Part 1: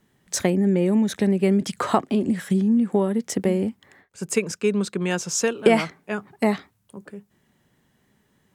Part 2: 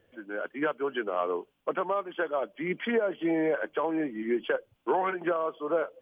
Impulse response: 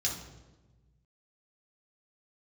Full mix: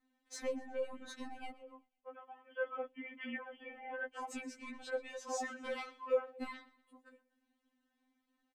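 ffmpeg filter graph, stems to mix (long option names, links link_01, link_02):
-filter_complex "[0:a]equalizer=frequency=4100:width_type=o:width=0.44:gain=4,asoftclip=type=tanh:threshold=-13.5dB,volume=-12dB,asplit=3[link_01][link_02][link_03];[link_01]atrim=end=1.51,asetpts=PTS-STARTPTS,afade=type=out:start_time=1.506:duration=0.004:curve=hsin[link_04];[link_02]atrim=start=1.51:end=3.99,asetpts=PTS-STARTPTS,volume=0[link_05];[link_03]atrim=start=3.99,asetpts=PTS-STARTPTS,afade=type=in:duration=0.004:curve=hsin[link_06];[link_04][link_05][link_06]concat=n=3:v=0:a=1,asplit=3[link_07][link_08][link_09];[link_08]volume=-20dB[link_10];[1:a]adelay=400,volume=-6dB,afade=type=in:start_time=2.22:duration=0.58:silence=0.251189[link_11];[link_09]apad=whole_len=282832[link_12];[link_11][link_12]sidechaincompress=threshold=-36dB:ratio=8:attack=50:release=778[link_13];[link_10]aecho=0:1:123|246|369|492|615|738:1|0.4|0.16|0.064|0.0256|0.0102[link_14];[link_07][link_13][link_14]amix=inputs=3:normalize=0,highshelf=frequency=5200:gain=-12,afftfilt=real='re*3.46*eq(mod(b,12),0)':imag='im*3.46*eq(mod(b,12),0)':win_size=2048:overlap=0.75"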